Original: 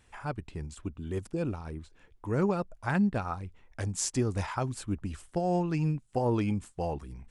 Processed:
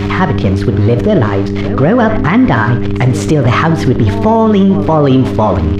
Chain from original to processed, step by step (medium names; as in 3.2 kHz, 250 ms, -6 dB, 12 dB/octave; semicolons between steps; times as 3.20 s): jump at every zero crossing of -42 dBFS; de-esser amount 55%; tape speed +26%; distance through air 190 m; pre-echo 189 ms -21 dB; on a send at -11 dB: reverberation RT60 0.35 s, pre-delay 5 ms; on the sum: mains buzz 100 Hz, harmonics 4, -42 dBFS -2 dB/octave; loudness maximiser +27 dB; trim -1 dB